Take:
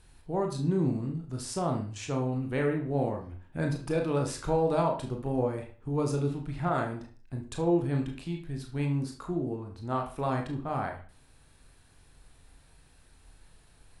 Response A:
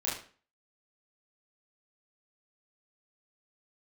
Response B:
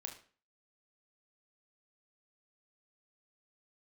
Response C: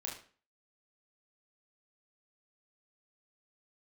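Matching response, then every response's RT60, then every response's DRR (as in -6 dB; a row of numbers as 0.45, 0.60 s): B; 0.40, 0.40, 0.40 s; -8.0, 2.0, -3.0 dB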